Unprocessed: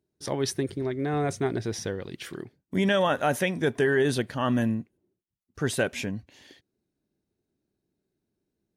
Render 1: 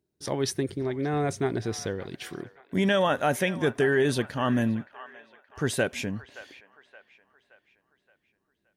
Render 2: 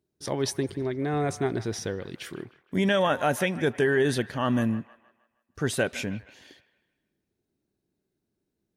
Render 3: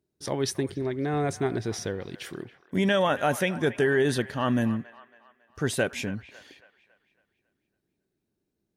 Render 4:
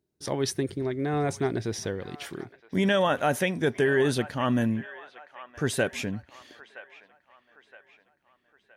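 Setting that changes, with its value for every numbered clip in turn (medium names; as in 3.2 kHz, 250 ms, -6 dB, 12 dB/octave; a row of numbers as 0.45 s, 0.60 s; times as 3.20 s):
feedback echo behind a band-pass, time: 572 ms, 156 ms, 276 ms, 968 ms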